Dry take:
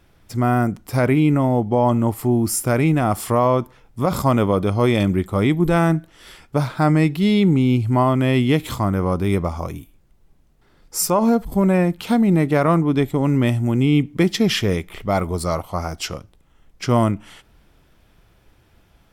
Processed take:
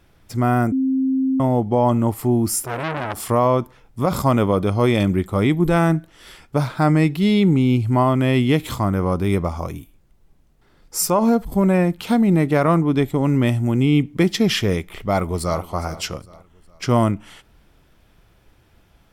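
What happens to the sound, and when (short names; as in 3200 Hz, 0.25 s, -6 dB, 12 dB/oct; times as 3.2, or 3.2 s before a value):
0.72–1.4 bleep 264 Hz -16 dBFS
2.63–3.29 core saturation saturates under 1900 Hz
14.8–15.6 echo throw 0.41 s, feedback 40%, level -16.5 dB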